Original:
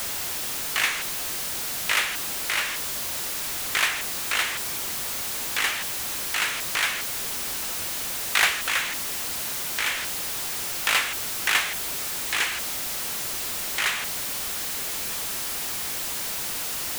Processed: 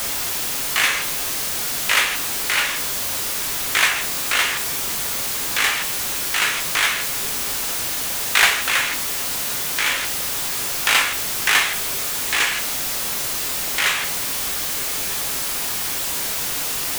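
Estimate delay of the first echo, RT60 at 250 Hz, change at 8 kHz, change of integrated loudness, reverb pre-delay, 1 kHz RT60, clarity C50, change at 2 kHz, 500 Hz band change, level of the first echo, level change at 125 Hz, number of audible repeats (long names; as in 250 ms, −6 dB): no echo audible, 0.45 s, +6.0 dB, +6.0 dB, 7 ms, 0.40 s, 11.0 dB, +6.0 dB, +6.0 dB, no echo audible, +6.0 dB, no echo audible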